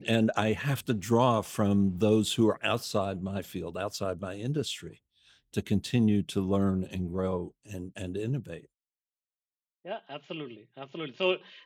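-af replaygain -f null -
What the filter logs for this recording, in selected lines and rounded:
track_gain = +9.0 dB
track_peak = 0.225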